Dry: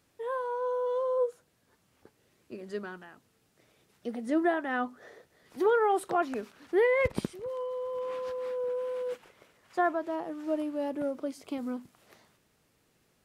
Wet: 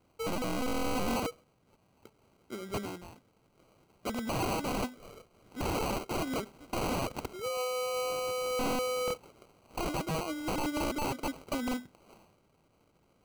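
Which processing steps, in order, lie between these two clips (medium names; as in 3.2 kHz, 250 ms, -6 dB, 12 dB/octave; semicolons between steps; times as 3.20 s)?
sample-and-hold 25×; integer overflow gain 28.5 dB; trim +1.5 dB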